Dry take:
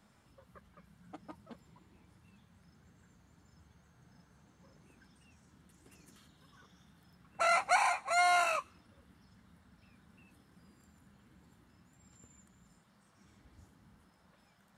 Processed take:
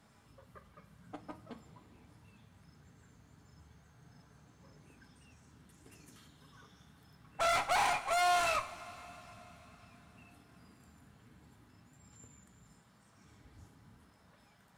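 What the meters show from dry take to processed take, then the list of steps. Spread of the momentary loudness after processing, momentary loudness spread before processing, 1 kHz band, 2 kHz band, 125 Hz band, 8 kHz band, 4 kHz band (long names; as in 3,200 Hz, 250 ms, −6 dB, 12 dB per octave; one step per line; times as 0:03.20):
22 LU, 6 LU, −1.0 dB, −2.5 dB, +4.5 dB, 0.0 dB, +2.0 dB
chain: tube saturation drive 32 dB, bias 0.6
coupled-rooms reverb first 0.32 s, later 4.5 s, from −18 dB, DRR 6.5 dB
level +4.5 dB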